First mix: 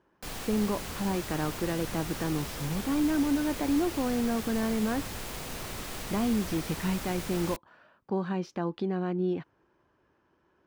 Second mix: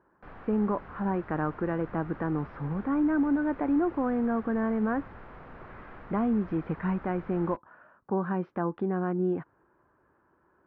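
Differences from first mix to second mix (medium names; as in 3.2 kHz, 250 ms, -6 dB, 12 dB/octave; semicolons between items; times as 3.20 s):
speech +8.5 dB; master: add four-pole ladder low-pass 1.8 kHz, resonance 35%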